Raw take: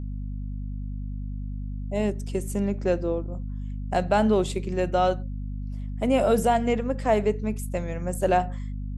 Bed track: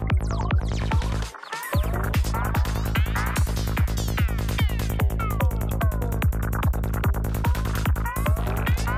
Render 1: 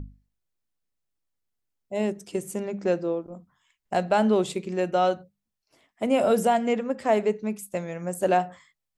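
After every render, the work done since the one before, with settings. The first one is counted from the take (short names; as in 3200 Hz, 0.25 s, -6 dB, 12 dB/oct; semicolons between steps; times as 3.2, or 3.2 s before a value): notches 50/100/150/200/250 Hz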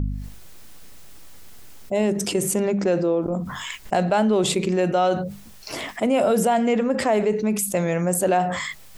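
fast leveller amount 70%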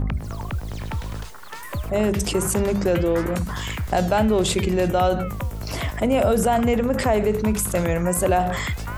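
add bed track -5.5 dB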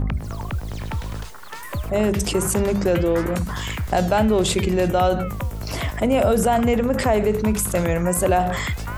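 gain +1 dB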